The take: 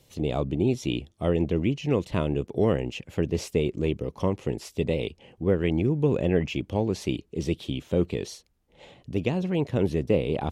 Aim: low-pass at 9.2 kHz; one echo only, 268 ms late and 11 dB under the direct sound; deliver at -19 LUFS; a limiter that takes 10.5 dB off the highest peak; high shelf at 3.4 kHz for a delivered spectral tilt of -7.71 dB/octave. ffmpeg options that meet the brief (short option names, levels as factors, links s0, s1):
-af "lowpass=9200,highshelf=f=3400:g=-7.5,alimiter=limit=0.0944:level=0:latency=1,aecho=1:1:268:0.282,volume=4.47"